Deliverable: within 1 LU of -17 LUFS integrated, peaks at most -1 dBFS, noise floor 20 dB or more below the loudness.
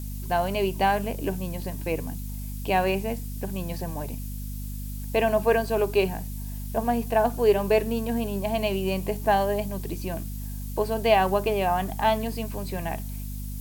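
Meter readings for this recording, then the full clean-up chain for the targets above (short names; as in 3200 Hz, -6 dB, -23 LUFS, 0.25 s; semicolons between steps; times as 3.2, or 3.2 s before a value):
hum 50 Hz; harmonics up to 250 Hz; hum level -31 dBFS; noise floor -34 dBFS; noise floor target -47 dBFS; loudness -26.5 LUFS; peak -7.0 dBFS; loudness target -17.0 LUFS
-> de-hum 50 Hz, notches 5; denoiser 13 dB, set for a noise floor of -34 dBFS; gain +9.5 dB; limiter -1 dBFS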